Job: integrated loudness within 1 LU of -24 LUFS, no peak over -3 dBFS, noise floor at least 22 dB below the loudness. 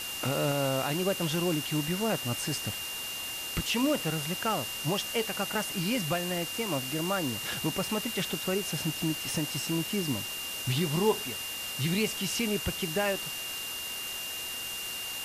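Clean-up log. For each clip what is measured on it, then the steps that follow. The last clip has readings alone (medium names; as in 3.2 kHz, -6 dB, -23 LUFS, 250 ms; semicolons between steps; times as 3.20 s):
steady tone 2.8 kHz; tone level -37 dBFS; noise floor -37 dBFS; noise floor target -53 dBFS; loudness -30.5 LUFS; peak level -15.0 dBFS; loudness target -24.0 LUFS
-> band-stop 2.8 kHz, Q 30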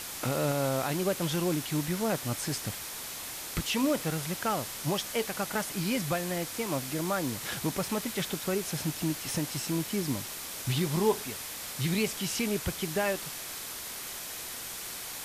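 steady tone not found; noise floor -40 dBFS; noise floor target -54 dBFS
-> noise reduction 14 dB, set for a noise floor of -40 dBFS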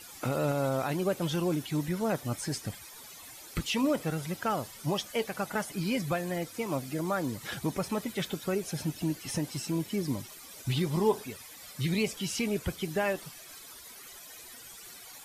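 noise floor -49 dBFS; noise floor target -54 dBFS
-> noise reduction 6 dB, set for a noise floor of -49 dBFS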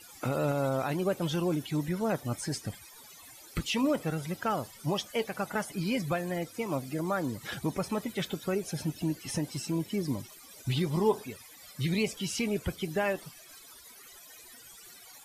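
noise floor -52 dBFS; noise floor target -54 dBFS
-> noise reduction 6 dB, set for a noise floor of -52 dBFS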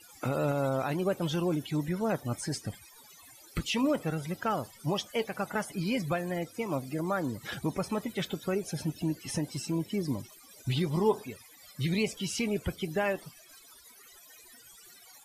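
noise floor -55 dBFS; loudness -32.5 LUFS; peak level -15.0 dBFS; loudness target -24.0 LUFS
-> trim +8.5 dB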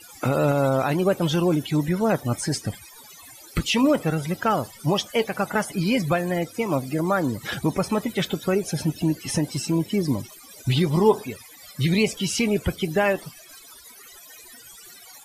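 loudness -24.0 LUFS; peak level -6.5 dBFS; noise floor -47 dBFS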